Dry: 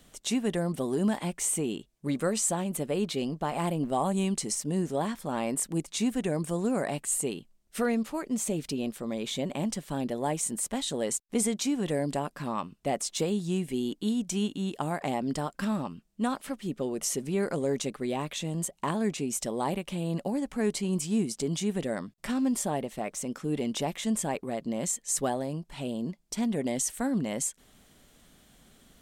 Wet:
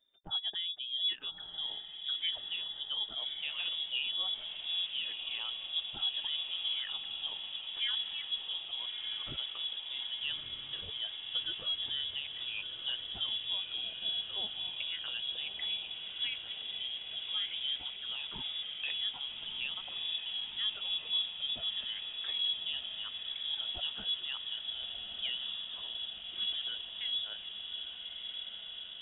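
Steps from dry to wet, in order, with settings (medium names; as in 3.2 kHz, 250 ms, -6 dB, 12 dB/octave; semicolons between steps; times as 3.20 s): expander on every frequency bin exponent 1.5; echo that smears into a reverb 1249 ms, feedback 77%, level -7 dB; frequency inversion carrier 3.6 kHz; trim -5.5 dB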